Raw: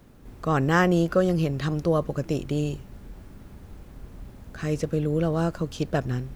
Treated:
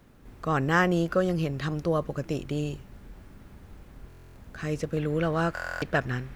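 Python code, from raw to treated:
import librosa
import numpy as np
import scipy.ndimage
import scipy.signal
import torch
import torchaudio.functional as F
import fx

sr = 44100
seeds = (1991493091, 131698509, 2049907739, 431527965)

y = fx.peak_eq(x, sr, hz=1800.0, db=fx.steps((0.0, 4.0), (4.97, 12.0)), octaves=1.9)
y = fx.buffer_glitch(y, sr, at_s=(4.08, 5.54), block=1024, repeats=11)
y = y * librosa.db_to_amplitude(-4.0)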